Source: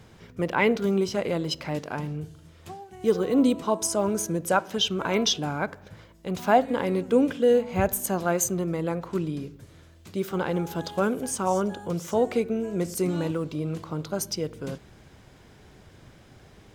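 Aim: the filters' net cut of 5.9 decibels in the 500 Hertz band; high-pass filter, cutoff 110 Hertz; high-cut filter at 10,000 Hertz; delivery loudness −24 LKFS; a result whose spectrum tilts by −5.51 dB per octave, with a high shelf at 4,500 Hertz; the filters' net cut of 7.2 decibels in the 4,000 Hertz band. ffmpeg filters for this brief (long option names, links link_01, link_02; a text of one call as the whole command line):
ffmpeg -i in.wav -af "highpass=110,lowpass=10000,equalizer=frequency=500:width_type=o:gain=-7,equalizer=frequency=4000:width_type=o:gain=-6,highshelf=frequency=4500:gain=-7.5,volume=6dB" out.wav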